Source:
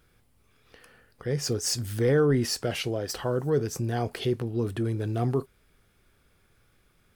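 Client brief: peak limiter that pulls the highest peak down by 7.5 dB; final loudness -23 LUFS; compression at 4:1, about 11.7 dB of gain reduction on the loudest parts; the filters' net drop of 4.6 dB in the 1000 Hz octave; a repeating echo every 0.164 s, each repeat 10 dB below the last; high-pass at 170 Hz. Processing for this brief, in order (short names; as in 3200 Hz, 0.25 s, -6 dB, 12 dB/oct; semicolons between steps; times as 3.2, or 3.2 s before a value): HPF 170 Hz; bell 1000 Hz -7.5 dB; compressor 4:1, threshold -35 dBFS; limiter -30.5 dBFS; feedback echo 0.164 s, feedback 32%, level -10 dB; gain +16.5 dB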